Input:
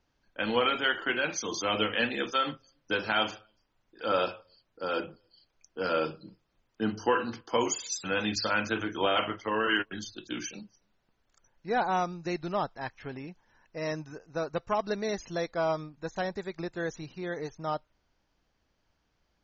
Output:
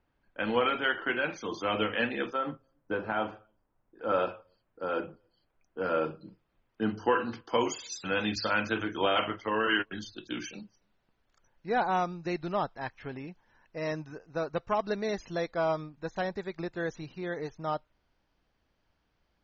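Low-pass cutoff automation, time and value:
2.5 kHz
from 2.33 s 1.2 kHz
from 4.09 s 1.9 kHz
from 6.21 s 3 kHz
from 7.30 s 4.6 kHz

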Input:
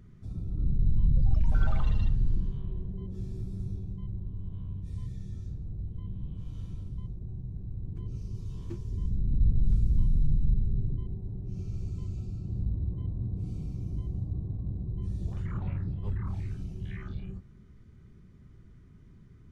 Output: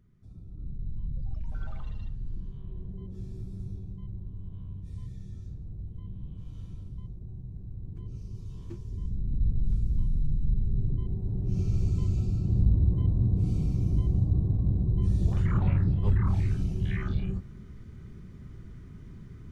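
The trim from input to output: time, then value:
2.19 s -10.5 dB
2.90 s -2.5 dB
10.36 s -2.5 dB
11.53 s +8.5 dB

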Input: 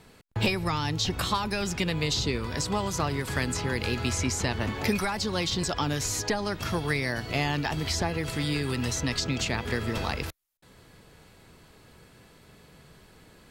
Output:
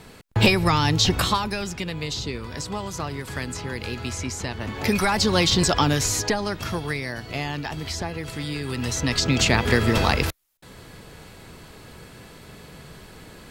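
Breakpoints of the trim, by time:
1.12 s +8.5 dB
1.77 s -2 dB
4.62 s -2 dB
5.14 s +9 dB
5.74 s +9 dB
7.07 s -1.5 dB
8.56 s -1.5 dB
9.47 s +10 dB

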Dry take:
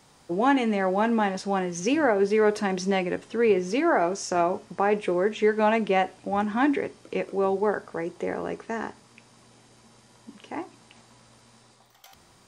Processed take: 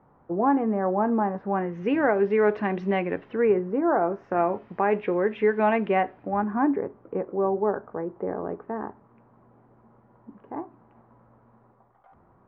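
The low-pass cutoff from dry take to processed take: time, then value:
low-pass 24 dB/octave
1.25 s 1.3 kHz
1.98 s 2.5 kHz
3.30 s 2.5 kHz
3.82 s 1.2 kHz
4.62 s 2.5 kHz
5.88 s 2.5 kHz
6.69 s 1.3 kHz

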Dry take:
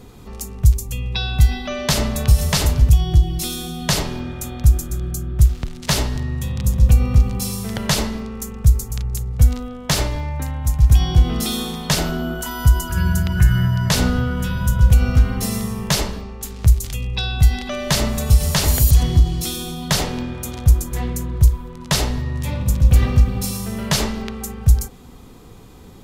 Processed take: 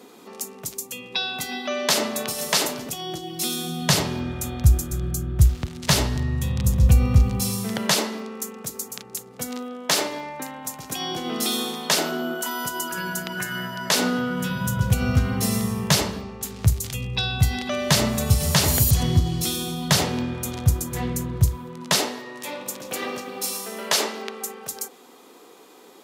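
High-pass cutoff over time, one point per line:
high-pass 24 dB/octave
3.26 s 250 Hz
4.32 s 63 Hz
7.34 s 63 Hz
8.01 s 250 Hz
13.98 s 250 Hz
15.11 s 84 Hz
21.52 s 84 Hz
22.16 s 320 Hz

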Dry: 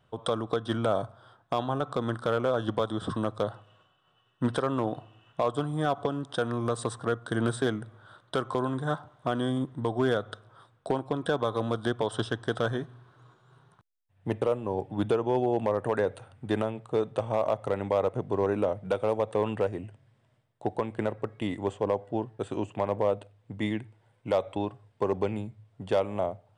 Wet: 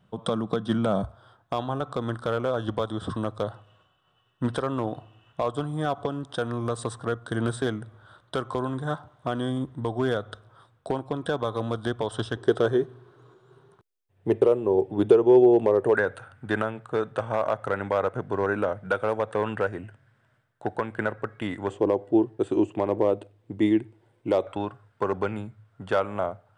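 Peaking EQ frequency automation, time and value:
peaking EQ +14 dB 0.57 oct
190 Hz
from 1.04 s 65 Hz
from 12.37 s 390 Hz
from 15.95 s 1.5 kHz
from 21.70 s 340 Hz
from 24.47 s 1.4 kHz

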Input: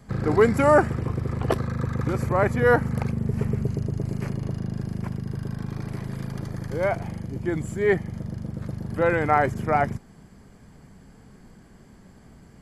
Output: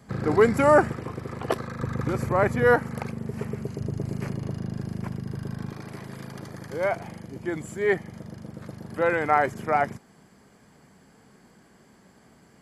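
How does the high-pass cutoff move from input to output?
high-pass 6 dB/octave
140 Hz
from 0.92 s 360 Hz
from 1.81 s 120 Hz
from 2.74 s 330 Hz
from 3.80 s 120 Hz
from 5.72 s 350 Hz

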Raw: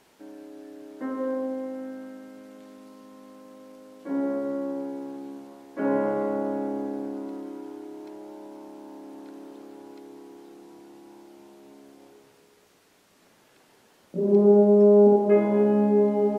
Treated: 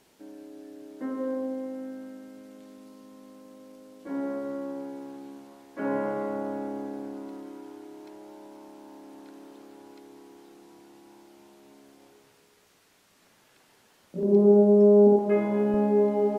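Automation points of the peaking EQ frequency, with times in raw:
peaking EQ -5 dB 2.5 oct
1.2 kHz
from 4.07 s 370 Hz
from 14.23 s 1.6 kHz
from 15.19 s 430 Hz
from 15.74 s 110 Hz

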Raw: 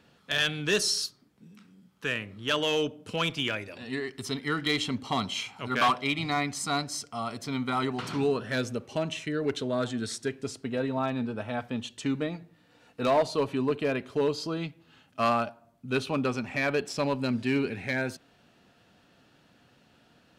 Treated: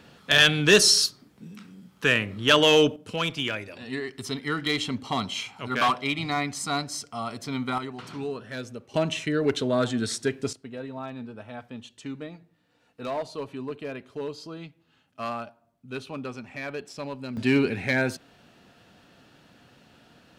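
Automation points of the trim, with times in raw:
+9 dB
from 2.96 s +1 dB
from 7.78 s -6 dB
from 8.94 s +5 dB
from 10.53 s -7 dB
from 17.37 s +5.5 dB

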